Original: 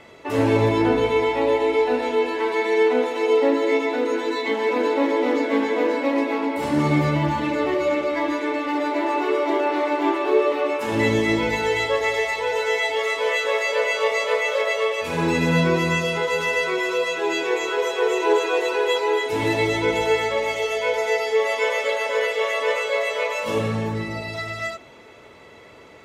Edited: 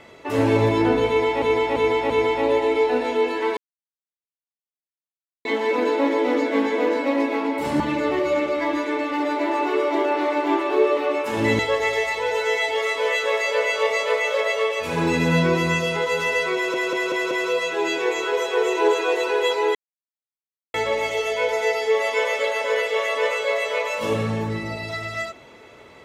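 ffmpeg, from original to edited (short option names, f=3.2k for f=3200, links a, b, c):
-filter_complex "[0:a]asplit=14[a][b][c][d][e][f][g][h][i][j][k][l][m][n];[a]atrim=end=1.422[o];[b]atrim=start=1.078:end=1.422[p];[c]atrim=start=1.078:end=1.422[q];[d]atrim=start=1.078:end=2.55,asetpts=PTS-STARTPTS,afade=t=out:st=1.468:d=0.004:c=hsin[r];[e]atrim=start=2.55:end=4.43,asetpts=PTS-STARTPTS,volume=0[s];[f]atrim=start=4.43:end=6.782,asetpts=PTS-STARTPTS,afade=t=in:d=0.004:c=hsin[t];[g]atrim=start=7.348:end=11.142[u];[h]atrim=start=11.798:end=16.952[v];[i]atrim=start=16.758:end=16.952[w];[j]atrim=start=16.758:end=16.952[x];[k]atrim=start=16.758:end=16.952[y];[l]atrim=start=16.758:end=19.2,asetpts=PTS-STARTPTS,afade=t=out:st=2.438:d=0.004:c=hsin[z];[m]atrim=start=19.2:end=20.19,asetpts=PTS-STARTPTS,volume=0[aa];[n]atrim=start=20.19,asetpts=PTS-STARTPTS,afade=t=in:d=0.004:c=hsin[ab];[o][p]acrossfade=d=0.004:c1=hsin:c2=hsin[ac];[ac][q]acrossfade=d=0.004:c1=hsin:c2=hsin[ad];[r][s][t]concat=n=3:v=0:a=1[ae];[ad][ae]acrossfade=d=0.004:c1=hsin:c2=hsin[af];[af][u]acrossfade=d=0.004:c1=hsin:c2=hsin[ag];[ag][v]acrossfade=d=0.004:c1=hsin:c2=hsin[ah];[ah][w]acrossfade=d=0.004:c1=hsin:c2=hsin[ai];[ai][x]acrossfade=d=0.004:c1=hsin:c2=hsin[aj];[aj][y]acrossfade=d=0.004:c1=hsin:c2=hsin[ak];[z][aa][ab]concat=n=3:v=0:a=1[al];[ak][al]acrossfade=d=0.004:c1=hsin:c2=hsin"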